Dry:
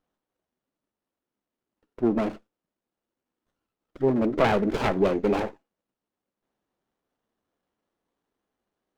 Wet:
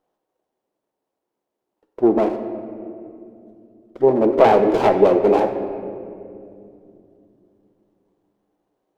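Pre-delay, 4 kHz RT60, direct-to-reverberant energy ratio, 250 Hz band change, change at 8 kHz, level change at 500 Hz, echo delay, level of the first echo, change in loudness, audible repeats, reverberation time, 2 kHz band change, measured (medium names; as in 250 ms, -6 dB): 3 ms, 1.4 s, 7.0 dB, +5.5 dB, no reading, +10.0 dB, no echo, no echo, +7.5 dB, no echo, 2.6 s, +2.0 dB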